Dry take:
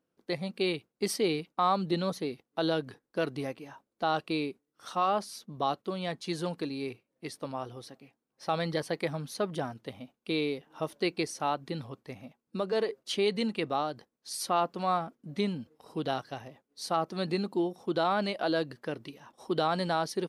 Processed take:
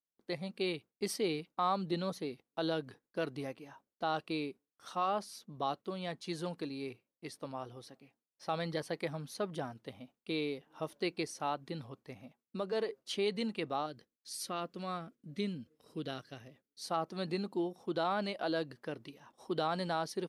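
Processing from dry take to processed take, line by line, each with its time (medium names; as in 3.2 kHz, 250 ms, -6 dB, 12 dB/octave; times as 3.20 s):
13.86–16.83 s: peaking EQ 850 Hz -12.5 dB
whole clip: gate with hold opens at -60 dBFS; trim -5.5 dB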